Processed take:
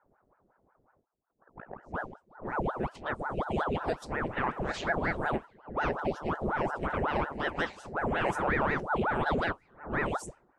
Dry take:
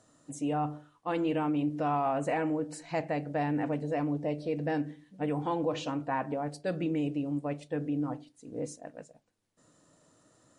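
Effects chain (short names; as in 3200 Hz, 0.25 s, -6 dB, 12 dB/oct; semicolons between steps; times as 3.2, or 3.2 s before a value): whole clip reversed; low shelf 110 Hz -9.5 dB; low-pass opened by the level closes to 330 Hz, open at -31 dBFS; flange 0.32 Hz, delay 8.1 ms, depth 9.1 ms, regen -63%; ring modulator with a swept carrier 630 Hz, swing 90%, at 5.5 Hz; gain +8 dB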